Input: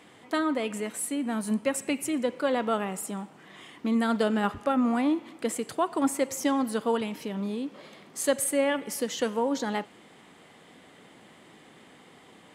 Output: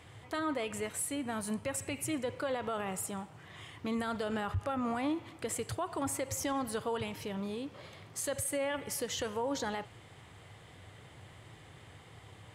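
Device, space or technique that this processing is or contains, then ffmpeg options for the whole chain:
car stereo with a boomy subwoofer: -af "lowshelf=f=150:t=q:w=3:g=13.5,alimiter=limit=-24dB:level=0:latency=1:release=52,volume=-2dB"

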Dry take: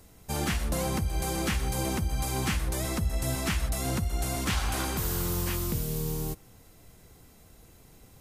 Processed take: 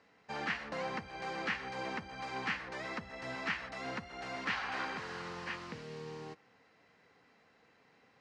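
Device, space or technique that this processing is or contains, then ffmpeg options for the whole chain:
phone earpiece: -af "highpass=340,equalizer=f=350:t=q:w=4:g=-9,equalizer=f=630:t=q:w=4:g=-5,equalizer=f=1.8k:t=q:w=4:g=6,equalizer=f=3.5k:t=q:w=4:g=-8,lowpass=f=4.1k:w=0.5412,lowpass=f=4.1k:w=1.3066,volume=-3dB"

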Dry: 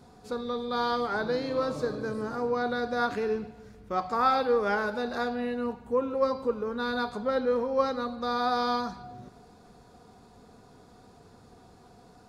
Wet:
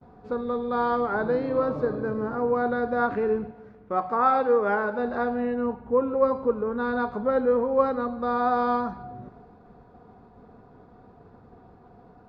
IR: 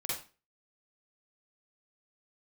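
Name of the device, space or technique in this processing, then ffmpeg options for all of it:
hearing-loss simulation: -filter_complex "[0:a]asettb=1/sr,asplit=3[a][b][c];[a]atrim=end=3.524[d];[b]atrim=start=3.52:end=4.99,asetpts=PTS-STARTPTS,afade=t=in:d=0.004:c=qsin,afade=t=out:st=1.466:d=0.004:c=qsin,highpass=f=200:p=1[e];[c]atrim=start=4.986[f];[d][e]acrossfade=d=0.004:c1=hsin:c2=qsin[g];[g][f]acrossfade=d=0.004:c1=qsin:c2=hsin,lowpass=1.5k,agate=range=-33dB:threshold=-52dB:ratio=3:detection=peak,volume=4.5dB"

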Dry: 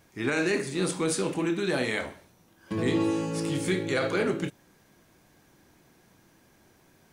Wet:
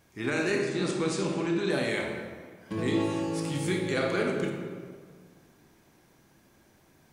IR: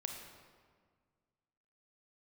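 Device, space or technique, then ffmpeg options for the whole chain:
stairwell: -filter_complex "[0:a]asettb=1/sr,asplit=3[a][b][c];[a]atrim=end=0.584[d];[b]atrim=start=0.58:end=1.7,asetpts=PTS-STARTPTS,afade=t=in:d=0.004:c=qsin,afade=t=out:st=1.116:d=0.004:c=qsin,lowpass=f=7.5k:w=0.5412,lowpass=f=7.5k:w=1.3066[e];[c]atrim=start=1.696[f];[d][e]acrossfade=d=0.004:c1=hsin:c2=qsin[g];[g][f]acrossfade=d=0.004:c1=qsin:c2=hsin[h];[1:a]atrim=start_sample=2205[i];[h][i]afir=irnorm=-1:irlink=0"

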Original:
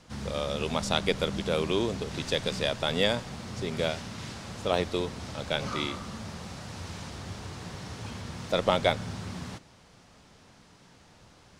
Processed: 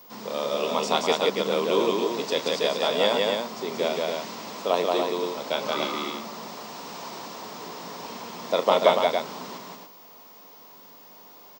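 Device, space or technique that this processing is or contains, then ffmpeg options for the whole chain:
old television with a line whistle: -af "highpass=f=220:w=0.5412,highpass=f=220:w=1.3066,equalizer=f=440:t=q:w=4:g=4,equalizer=f=670:t=q:w=4:g=4,equalizer=f=1k:t=q:w=4:g=9,equalizer=f=1.6k:t=q:w=4:g=-4,equalizer=f=5.2k:t=q:w=4:g=3,lowpass=f=8.6k:w=0.5412,lowpass=f=8.6k:w=1.3066,aecho=1:1:34.99|177.8|285.7:0.251|0.794|0.562,aeval=exprs='val(0)+0.00398*sin(2*PI*15625*n/s)':c=same"

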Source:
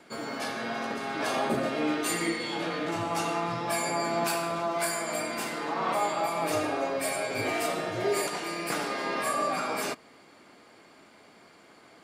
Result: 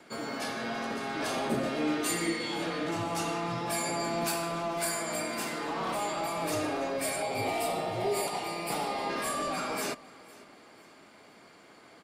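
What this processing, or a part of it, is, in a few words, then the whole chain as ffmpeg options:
one-band saturation: -filter_complex "[0:a]acrossover=split=390|3700[a][b][c];[b]asoftclip=type=tanh:threshold=-31dB[d];[a][d][c]amix=inputs=3:normalize=0,asettb=1/sr,asplit=3[e][f][g];[e]atrim=end=7.224[h];[f]atrim=start=7.22:end=9.1,asetpts=PTS-STARTPTS,afade=t=in:d=0.004:c=qsin,afade=t=out:st=1.876:d=0.004:c=qsin,equalizer=f=315:t=o:w=0.33:g=-5,equalizer=f=800:t=o:w=0.33:g=10,equalizer=f=1.6k:t=o:w=0.33:g=-11,equalizer=f=6.3k:t=o:w=0.33:g=-9[i];[g]atrim=start=9.096[j];[h][i]acrossfade=d=0.004:c1=hsin:c2=qsin[k];[k][j]acrossfade=d=0.004:c1=qsin:c2=hsin,aecho=1:1:504|1008|1512:0.0794|0.031|0.0121"

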